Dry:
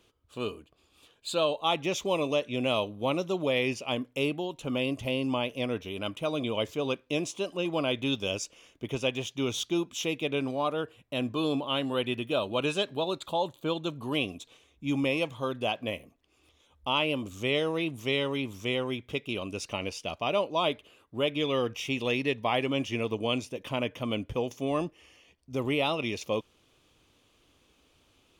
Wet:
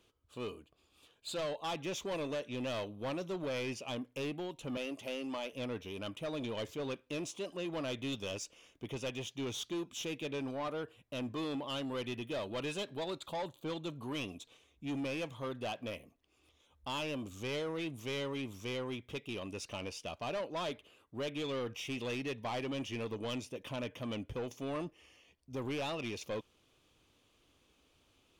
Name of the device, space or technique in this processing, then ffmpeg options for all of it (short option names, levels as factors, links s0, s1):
saturation between pre-emphasis and de-emphasis: -filter_complex "[0:a]asettb=1/sr,asplit=3[s0][s1][s2];[s0]atrim=end=4.774[s3];[s1]atrim=start=4.77:end=5.53,asetpts=PTS-STARTPTS,afade=t=in:d=0.004:c=qsin,afade=t=out:st=0.756:d=0.004:c=qsin,highpass=290[s4];[s2]atrim=start=5.526[s5];[s3][s4]acrossfade=d=0.004:c1=hsin:c2=qsin[s6];[s6][s5]acrossfade=d=0.004:c1=qsin:c2=hsin,highshelf=f=8700:g=7,asoftclip=type=tanh:threshold=0.0398,highshelf=f=8700:g=-7,volume=0.562"